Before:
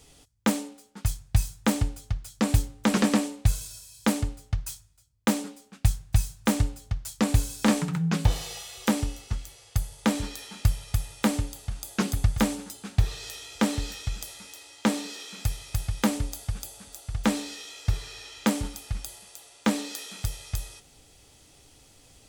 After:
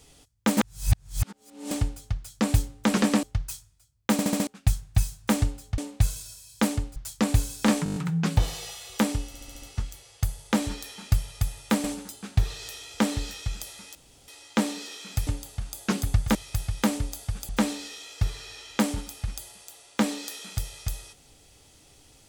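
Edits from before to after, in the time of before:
0.57–1.71 reverse
3.23–4.41 move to 6.96
5.3 stutter in place 0.07 s, 5 plays
7.84 stutter 0.02 s, 7 plays
9.15 stutter 0.07 s, 6 plays
11.37–12.45 move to 15.55
14.56 insert room tone 0.33 s
16.69–17.16 cut

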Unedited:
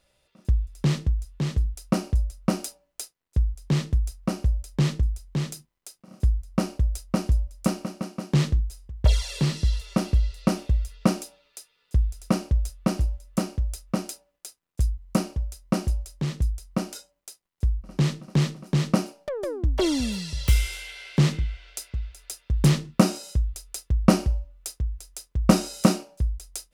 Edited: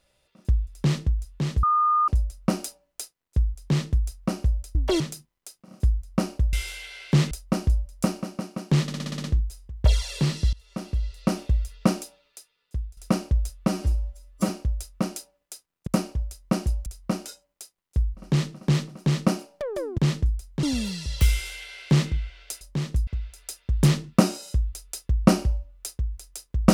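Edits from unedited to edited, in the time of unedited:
1.63–2.08 bleep 1220 Hz -17.5 dBFS
4.75–5.4 swap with 19.65–19.9
8.44 stutter 0.06 s, 8 plays
9.73–10.62 fade in, from -22 dB
11.22–12.17 fade out, to -13.5 dB
12.88–13.42 stretch 1.5×
14.8–15.08 cut
16.07–16.53 move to 21.88
20.58–21.36 copy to 6.93

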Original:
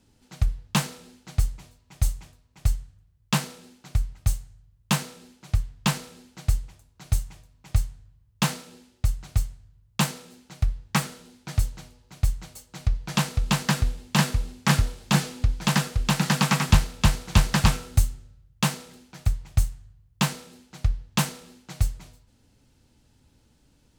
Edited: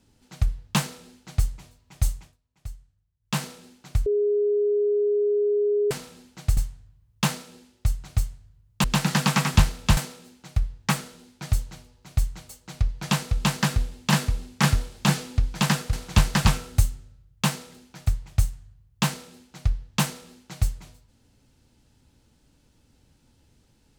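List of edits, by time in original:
2.15–3.44 dip -14.5 dB, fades 0.23 s
4.06–5.91 bleep 413 Hz -19 dBFS
6.57–7.76 cut
15.99–17.12 move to 10.03

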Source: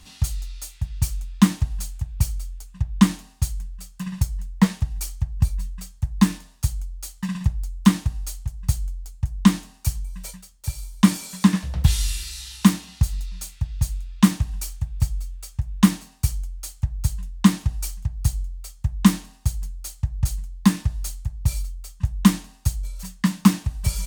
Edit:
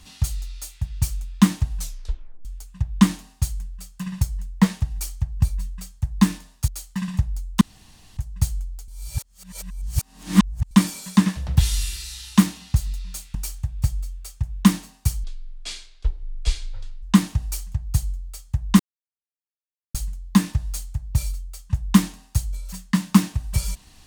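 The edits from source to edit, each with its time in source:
1.77 tape stop 0.68 s
6.68–6.95 cut
7.88–8.44 room tone
9.15–10.98 reverse
13.62–14.53 cut
16.42–17.33 speed 51%
19.1–20.25 mute

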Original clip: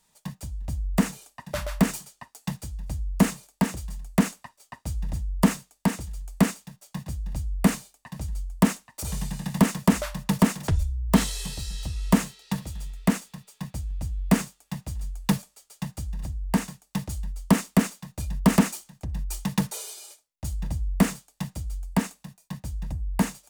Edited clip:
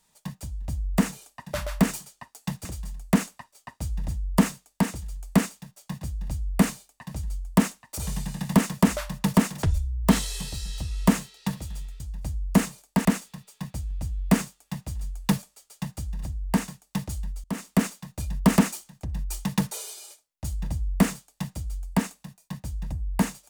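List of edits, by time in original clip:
2.65–3.7 move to 13.05
17.44–17.86 fade in, from -23 dB

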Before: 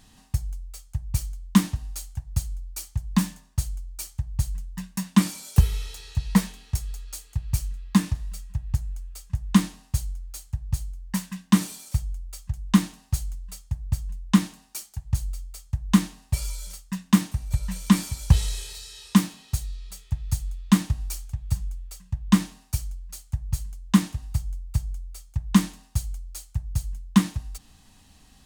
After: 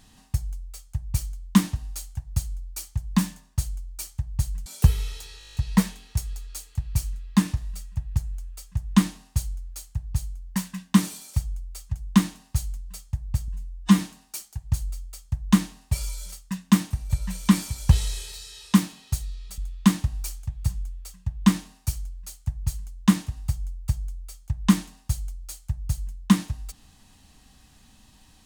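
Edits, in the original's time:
4.66–5.4 cut
6.13 stutter 0.02 s, 9 plays
14.06–14.4 stretch 1.5×
19.99–20.44 cut

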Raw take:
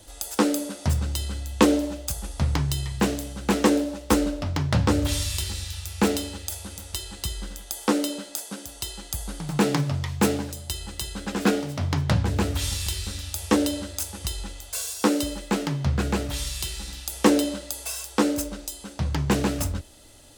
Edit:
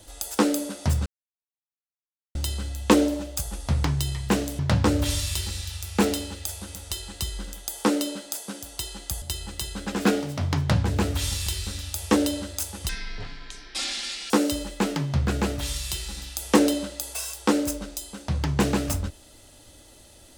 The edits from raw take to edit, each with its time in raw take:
1.06 insert silence 1.29 s
3.3–4.62 cut
9.25–10.62 cut
14.29–15.01 speed 51%

